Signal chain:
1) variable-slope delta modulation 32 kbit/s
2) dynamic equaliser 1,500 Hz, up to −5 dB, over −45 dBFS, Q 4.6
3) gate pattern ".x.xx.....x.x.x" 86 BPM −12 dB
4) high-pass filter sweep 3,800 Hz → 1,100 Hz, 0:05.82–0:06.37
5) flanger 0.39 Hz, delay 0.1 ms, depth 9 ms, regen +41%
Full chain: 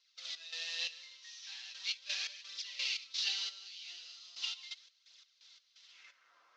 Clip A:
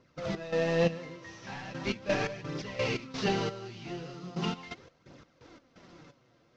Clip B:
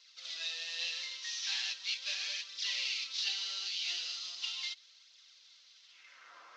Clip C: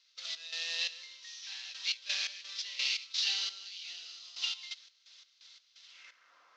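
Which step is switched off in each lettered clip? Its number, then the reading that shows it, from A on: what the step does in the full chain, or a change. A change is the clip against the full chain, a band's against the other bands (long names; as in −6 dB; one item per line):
4, 1 kHz band +26.5 dB
3, 1 kHz band +1.5 dB
5, change in crest factor −2.0 dB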